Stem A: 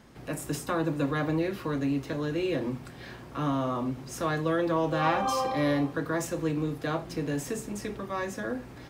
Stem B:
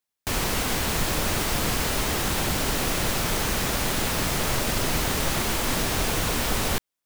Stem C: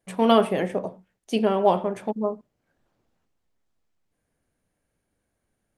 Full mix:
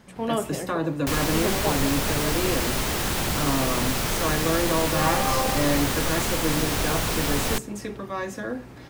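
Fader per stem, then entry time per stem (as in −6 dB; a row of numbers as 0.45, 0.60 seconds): +2.0, −0.5, −8.5 decibels; 0.00, 0.80, 0.00 seconds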